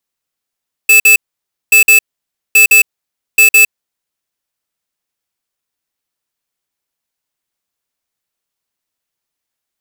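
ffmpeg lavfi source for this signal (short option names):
-f lavfi -i "aevalsrc='0.531*(2*lt(mod(2620*t,1),0.5)-1)*clip(min(mod(mod(t,0.83),0.16),0.11-mod(mod(t,0.83),0.16))/0.005,0,1)*lt(mod(t,0.83),0.32)':d=3.32:s=44100"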